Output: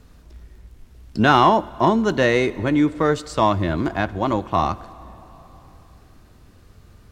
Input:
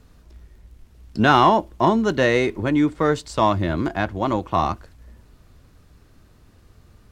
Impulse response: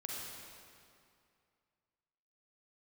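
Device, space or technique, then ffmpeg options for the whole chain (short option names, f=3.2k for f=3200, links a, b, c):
ducked reverb: -filter_complex "[0:a]asplit=3[a][b][c];[1:a]atrim=start_sample=2205[d];[b][d]afir=irnorm=-1:irlink=0[e];[c]apad=whole_len=313840[f];[e][f]sidechaincompress=threshold=-24dB:ratio=8:attack=5.6:release=1320,volume=-5.5dB[g];[a][g]amix=inputs=2:normalize=0"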